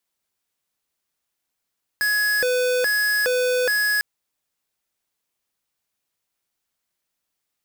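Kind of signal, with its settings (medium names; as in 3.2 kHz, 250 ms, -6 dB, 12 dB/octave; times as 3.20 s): siren hi-lo 500–1680 Hz 1.2 per s square -20.5 dBFS 2.00 s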